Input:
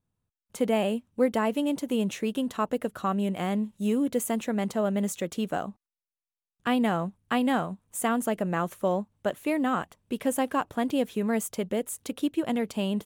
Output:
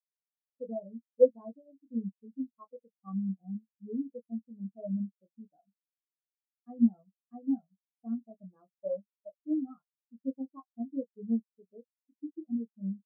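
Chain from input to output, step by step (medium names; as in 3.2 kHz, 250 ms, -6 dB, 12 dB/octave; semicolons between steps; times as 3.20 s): doubling 26 ms -4 dB; spectral contrast expander 4:1; trim +1.5 dB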